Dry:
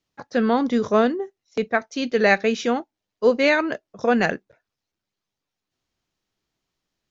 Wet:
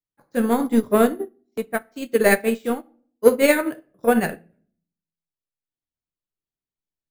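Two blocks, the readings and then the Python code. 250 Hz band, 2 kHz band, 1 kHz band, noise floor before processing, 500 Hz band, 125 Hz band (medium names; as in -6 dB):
+1.0 dB, -2.0 dB, -2.0 dB, -85 dBFS, +1.0 dB, +0.5 dB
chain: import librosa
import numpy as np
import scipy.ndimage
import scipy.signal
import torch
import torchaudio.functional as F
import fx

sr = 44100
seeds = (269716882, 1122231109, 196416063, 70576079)

p1 = fx.low_shelf(x, sr, hz=350.0, db=6.0)
p2 = np.repeat(scipy.signal.resample_poly(p1, 1, 4), 4)[:len(p1)]
p3 = 10.0 ** (-15.0 / 20.0) * np.tanh(p2 / 10.0 ** (-15.0 / 20.0))
p4 = p2 + (p3 * librosa.db_to_amplitude(-4.0))
p5 = fx.vibrato(p4, sr, rate_hz=2.2, depth_cents=14.0)
p6 = fx.room_shoebox(p5, sr, seeds[0], volume_m3=76.0, walls='mixed', distance_m=0.4)
y = fx.upward_expand(p6, sr, threshold_db=-25.0, expansion=2.5)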